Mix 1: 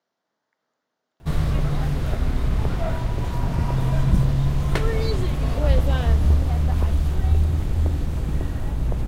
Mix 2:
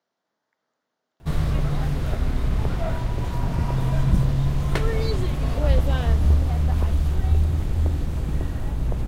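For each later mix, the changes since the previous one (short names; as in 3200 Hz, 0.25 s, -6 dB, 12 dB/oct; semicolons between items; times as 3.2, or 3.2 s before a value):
reverb: off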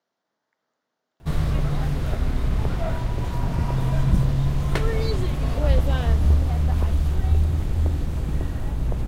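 none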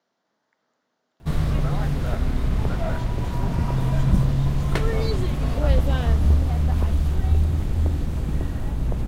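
speech +5.0 dB; master: add bell 220 Hz +3 dB 0.72 oct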